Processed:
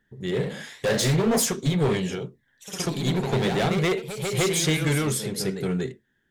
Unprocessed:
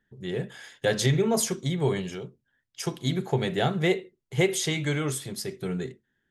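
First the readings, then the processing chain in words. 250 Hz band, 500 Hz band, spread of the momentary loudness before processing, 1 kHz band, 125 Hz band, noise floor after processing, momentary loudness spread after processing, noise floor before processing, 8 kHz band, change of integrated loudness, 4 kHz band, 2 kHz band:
+3.5 dB, +2.0 dB, 11 LU, +3.0 dB, +3.0 dB, -71 dBFS, 9 LU, -78 dBFS, +4.5 dB, +3.0 dB, +3.5 dB, +2.5 dB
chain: overload inside the chain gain 24.5 dB; ever faster or slower copies 89 ms, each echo +1 st, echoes 3, each echo -6 dB; trim +4.5 dB

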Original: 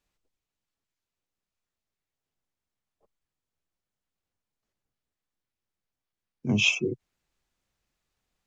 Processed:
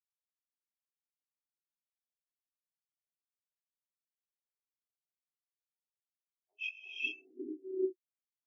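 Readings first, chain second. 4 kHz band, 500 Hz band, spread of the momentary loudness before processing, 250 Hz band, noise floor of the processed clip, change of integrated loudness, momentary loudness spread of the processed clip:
-16.0 dB, -3.0 dB, 16 LU, -11.5 dB, under -85 dBFS, -14.0 dB, 8 LU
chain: single-diode clipper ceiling -27 dBFS; doubling 32 ms -10.5 dB; harmonic tremolo 5.8 Hz, depth 70%, crossover 630 Hz; elliptic high-pass 270 Hz, stop band 40 dB; bands offset in time highs, lows 540 ms, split 550 Hz; gated-style reverb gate 460 ms rising, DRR -4 dB; spectral contrast expander 2.5:1; trim -9 dB

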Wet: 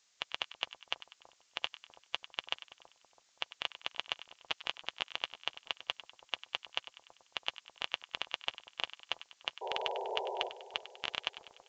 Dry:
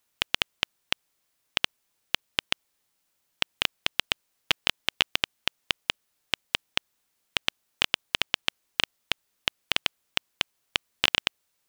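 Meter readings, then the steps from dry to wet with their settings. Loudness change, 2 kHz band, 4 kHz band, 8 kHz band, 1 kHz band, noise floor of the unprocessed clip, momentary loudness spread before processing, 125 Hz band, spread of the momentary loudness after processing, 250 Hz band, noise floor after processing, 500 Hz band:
-10.5 dB, -11.5 dB, -10.5 dB, -16.5 dB, -4.0 dB, -76 dBFS, 6 LU, -20.0 dB, 6 LU, -14.0 dB, -72 dBFS, -1.5 dB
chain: expander on every frequency bin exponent 2; peaking EQ 870 Hz +7.5 dB 1.8 oct; reverse; compression 6:1, threshold -36 dBFS, peak gain reduction 18.5 dB; reverse; painted sound noise, 9.61–10.49 s, 370–1000 Hz -41 dBFS; added noise blue -65 dBFS; resampled via 16 kHz; on a send: two-band feedback delay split 1 kHz, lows 329 ms, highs 98 ms, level -14 dB; on the sum: trim +2.5 dB

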